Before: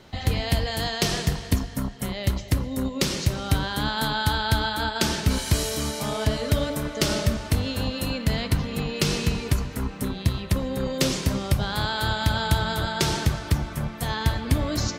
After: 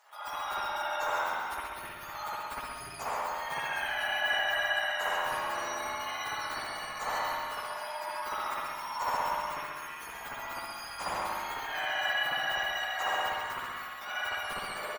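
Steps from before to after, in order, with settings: spectrum mirrored in octaves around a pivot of 1600 Hz; in parallel at -1.5 dB: level quantiser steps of 14 dB; on the sum: Chebyshev high-pass 1000 Hz, order 3; resonant high shelf 5400 Hz +13.5 dB, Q 1.5; soft clip -8.5 dBFS, distortion -19 dB; air absorption 320 m; on a send: feedback echo 0.136 s, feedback 41%, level -6 dB; on the sum: spring tank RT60 1.1 s, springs 58 ms, chirp 65 ms, DRR -6.5 dB; gain -4 dB

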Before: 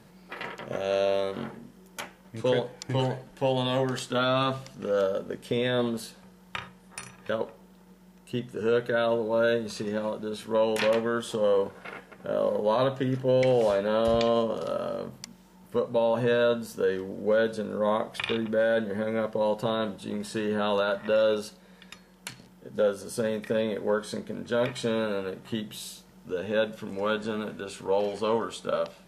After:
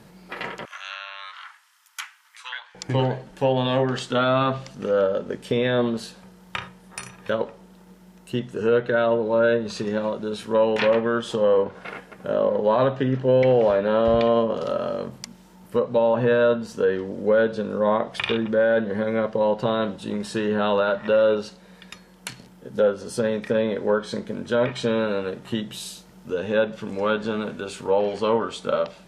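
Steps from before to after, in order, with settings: treble ducked by the level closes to 2600 Hz, closed at -21 dBFS; 0.65–2.75 steep high-pass 1100 Hz 36 dB/oct; gain +5 dB

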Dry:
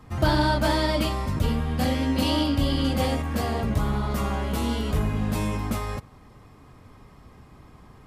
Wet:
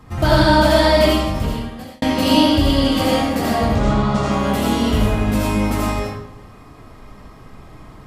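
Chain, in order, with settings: 3.65–4.32 LPF 7600 Hz 24 dB/oct; digital reverb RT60 0.81 s, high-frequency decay 0.85×, pre-delay 40 ms, DRR -4 dB; 1.09–2.02 fade out; gain +4 dB

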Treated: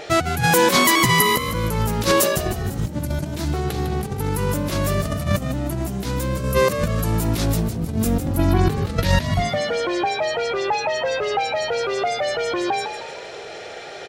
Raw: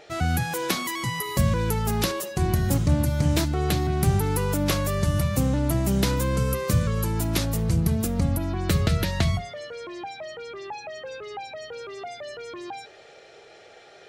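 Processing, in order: negative-ratio compressor -28 dBFS, ratio -0.5; frequency-shifting echo 0.154 s, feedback 40%, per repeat +60 Hz, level -9 dB; gain +8.5 dB

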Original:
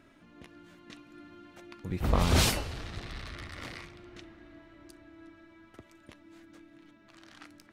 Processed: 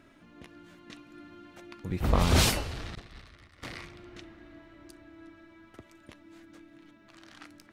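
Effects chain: 2.95–3.63 expander -32 dBFS; gain +1.5 dB

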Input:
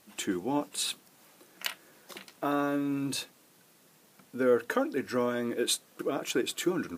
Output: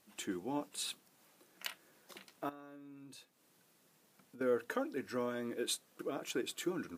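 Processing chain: 2.49–4.41 compressor 4:1, threshold -46 dBFS, peak gain reduction 17 dB; gain -8.5 dB

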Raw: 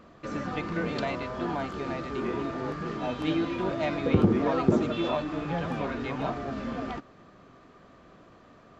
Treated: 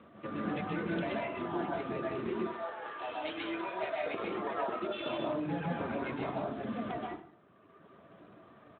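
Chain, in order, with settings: 2.32–5.06 HPF 650 Hz 12 dB/oct; reverb removal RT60 1.9 s; compressor 3:1, threshold -33 dBFS, peak gain reduction 7 dB; outdoor echo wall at 17 m, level -19 dB; plate-style reverb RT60 0.53 s, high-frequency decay 0.75×, pre-delay 0.115 s, DRR -2.5 dB; gain -3 dB; Speex 15 kbps 8000 Hz

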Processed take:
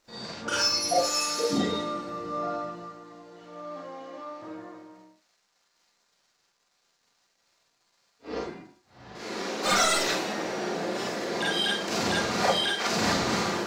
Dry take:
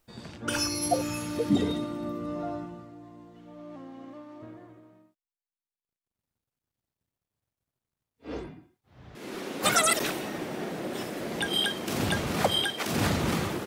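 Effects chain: 0.98–1.53 tone controls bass -12 dB, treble +11 dB; in parallel at -2.5 dB: compressor, threshold -40 dBFS, peak gain reduction 19.5 dB; on the sum: crackle 310/s -55 dBFS; band shelf 5500 Hz +9.5 dB 1.1 oct; overdrive pedal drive 14 dB, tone 1700 Hz, clips at -4.5 dBFS; Schroeder reverb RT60 0.3 s, combs from 32 ms, DRR -5 dB; gain -8.5 dB

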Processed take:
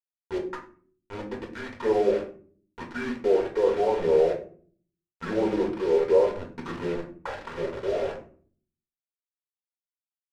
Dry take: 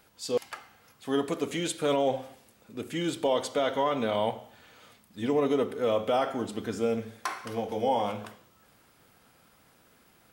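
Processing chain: HPF 270 Hz 12 dB/oct; notch 4900 Hz, Q 6.3; treble ducked by the level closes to 1300 Hz, closed at -23.5 dBFS; band shelf 1200 Hz +9.5 dB 2.6 oct; compressor 1.5:1, threshold -29 dBFS, peak gain reduction 5.5 dB; envelope phaser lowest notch 420 Hz, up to 2900 Hz, full sweep at -20 dBFS; random-step tremolo, depth 65%; pitch shift -5 st; requantised 6-bit, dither none; reverb RT60 0.45 s, pre-delay 4 ms, DRR -0.5 dB; careless resampling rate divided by 2×, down none, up hold; tape spacing loss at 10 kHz 22 dB

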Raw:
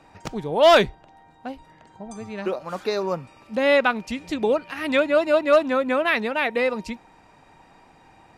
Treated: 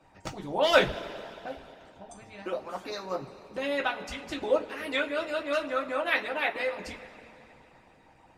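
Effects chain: two-slope reverb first 0.25 s, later 2.9 s, from -18 dB, DRR -1 dB; harmonic-percussive split harmonic -13 dB; gain -5 dB

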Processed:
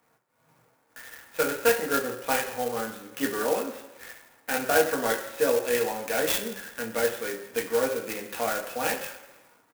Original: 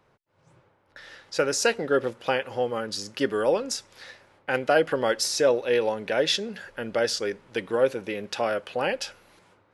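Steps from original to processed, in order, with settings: low shelf 230 Hz -8 dB; reverb RT60 1.0 s, pre-delay 3 ms, DRR -1.5 dB; downsampling 8000 Hz; clock jitter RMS 0.063 ms; gain -5 dB

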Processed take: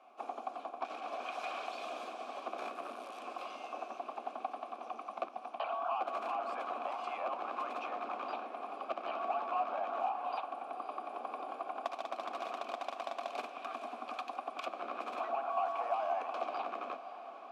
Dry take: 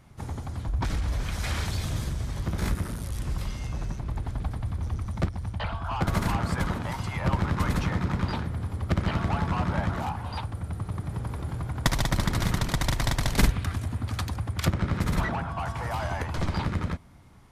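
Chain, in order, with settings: steep high-pass 230 Hz 72 dB/oct; compressor, threshold -36 dBFS, peak gain reduction 14.5 dB; vowel filter a; diffused feedback echo 0.542 s, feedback 63%, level -12.5 dB; gain +11 dB

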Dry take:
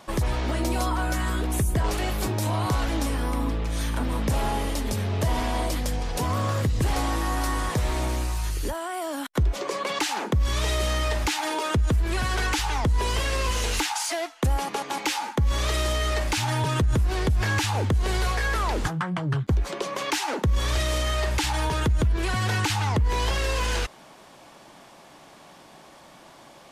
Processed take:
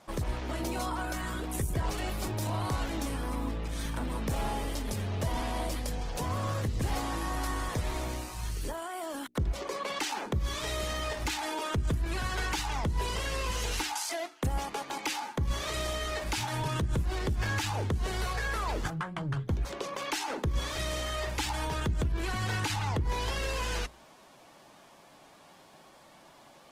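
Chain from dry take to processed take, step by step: notches 60/120/180/240/300/360/420 Hz; gain -6.5 dB; Opus 16 kbps 48000 Hz

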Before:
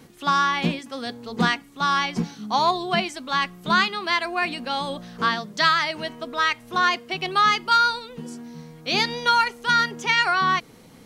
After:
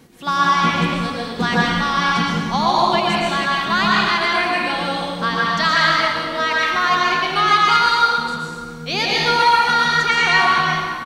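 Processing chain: frequency-shifting echo 82 ms, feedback 59%, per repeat -68 Hz, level -15.5 dB; plate-style reverb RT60 1.6 s, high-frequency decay 0.85×, pre-delay 0.105 s, DRR -4.5 dB

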